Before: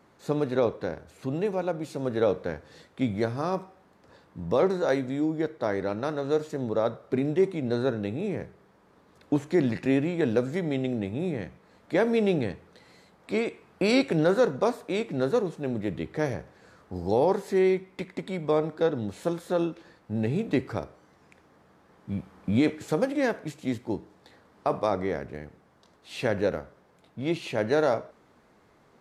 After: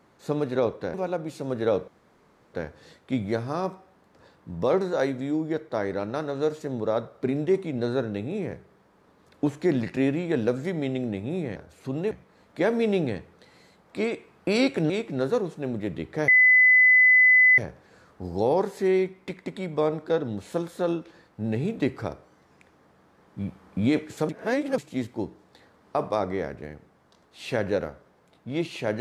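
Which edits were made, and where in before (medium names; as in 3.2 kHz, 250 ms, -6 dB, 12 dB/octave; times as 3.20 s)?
0.94–1.49 s: move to 11.45 s
2.43 s: insert room tone 0.66 s
14.24–14.91 s: delete
16.29 s: add tone 2.01 kHz -13 dBFS 1.30 s
23.00–23.49 s: reverse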